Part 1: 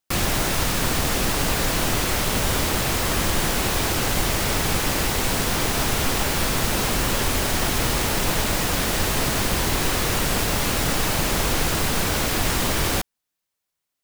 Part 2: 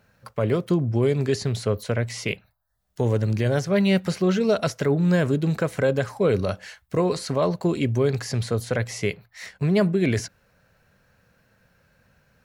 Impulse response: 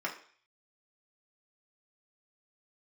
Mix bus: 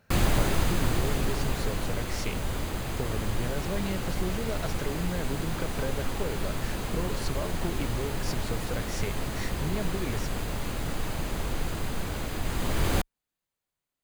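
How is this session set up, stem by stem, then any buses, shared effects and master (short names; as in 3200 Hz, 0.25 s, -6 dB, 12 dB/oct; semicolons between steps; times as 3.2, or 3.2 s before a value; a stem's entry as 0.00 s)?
-3.0 dB, 0.00 s, no send, tilt -1.5 dB/oct; notch 5500 Hz, Q 8.3; auto duck -9 dB, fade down 1.95 s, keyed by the second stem
-2.0 dB, 0.00 s, no send, compressor, threshold -30 dBFS, peak gain reduction 13.5 dB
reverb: off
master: dry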